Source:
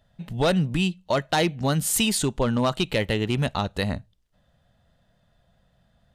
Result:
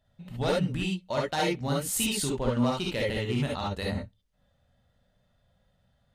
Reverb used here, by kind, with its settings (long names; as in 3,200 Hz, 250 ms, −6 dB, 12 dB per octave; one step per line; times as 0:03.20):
reverb whose tail is shaped and stops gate 90 ms rising, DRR −3 dB
level −9.5 dB